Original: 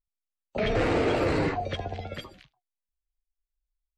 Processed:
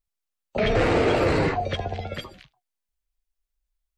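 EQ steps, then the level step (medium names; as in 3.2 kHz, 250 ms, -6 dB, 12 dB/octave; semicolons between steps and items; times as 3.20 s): peaking EQ 290 Hz -4 dB 0.26 oct; +4.5 dB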